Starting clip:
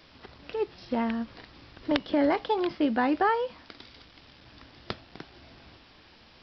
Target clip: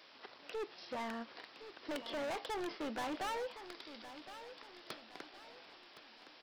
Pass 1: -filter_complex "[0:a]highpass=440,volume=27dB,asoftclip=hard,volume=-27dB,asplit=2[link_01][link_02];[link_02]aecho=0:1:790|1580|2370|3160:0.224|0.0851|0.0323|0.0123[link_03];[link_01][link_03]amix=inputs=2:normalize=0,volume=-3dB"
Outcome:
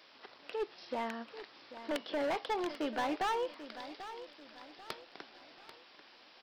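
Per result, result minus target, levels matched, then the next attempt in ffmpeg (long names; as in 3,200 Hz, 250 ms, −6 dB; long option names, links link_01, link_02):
echo 275 ms early; gain into a clipping stage and back: distortion −4 dB
-filter_complex "[0:a]highpass=440,volume=27dB,asoftclip=hard,volume=-27dB,asplit=2[link_01][link_02];[link_02]aecho=0:1:1065|2130|3195|4260:0.224|0.0851|0.0323|0.0123[link_03];[link_01][link_03]amix=inputs=2:normalize=0,volume=-3dB"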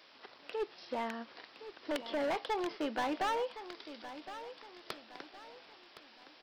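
gain into a clipping stage and back: distortion −4 dB
-filter_complex "[0:a]highpass=440,volume=34.5dB,asoftclip=hard,volume=-34.5dB,asplit=2[link_01][link_02];[link_02]aecho=0:1:1065|2130|3195|4260:0.224|0.0851|0.0323|0.0123[link_03];[link_01][link_03]amix=inputs=2:normalize=0,volume=-3dB"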